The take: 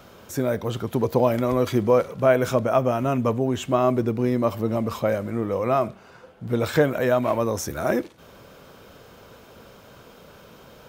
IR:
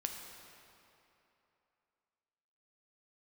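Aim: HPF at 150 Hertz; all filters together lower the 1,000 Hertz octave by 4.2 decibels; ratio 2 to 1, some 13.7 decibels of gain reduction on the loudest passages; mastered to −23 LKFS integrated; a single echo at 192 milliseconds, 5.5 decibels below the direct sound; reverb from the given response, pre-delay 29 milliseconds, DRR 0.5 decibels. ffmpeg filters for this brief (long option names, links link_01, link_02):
-filter_complex "[0:a]highpass=150,equalizer=frequency=1000:width_type=o:gain=-6,acompressor=threshold=-41dB:ratio=2,aecho=1:1:192:0.531,asplit=2[link_01][link_02];[1:a]atrim=start_sample=2205,adelay=29[link_03];[link_02][link_03]afir=irnorm=-1:irlink=0,volume=-1dB[link_04];[link_01][link_04]amix=inputs=2:normalize=0,volume=10dB"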